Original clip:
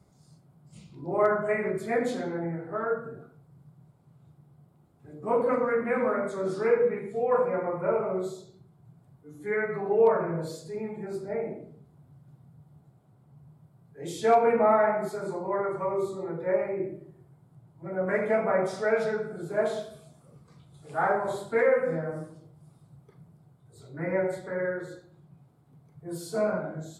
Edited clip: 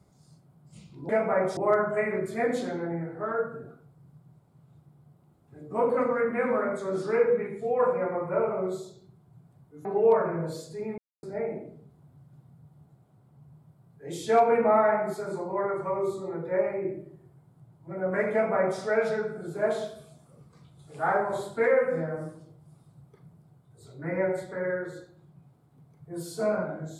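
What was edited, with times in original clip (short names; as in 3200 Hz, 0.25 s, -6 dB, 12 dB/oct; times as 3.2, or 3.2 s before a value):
9.37–9.8 cut
10.93–11.18 mute
18.27–18.75 copy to 1.09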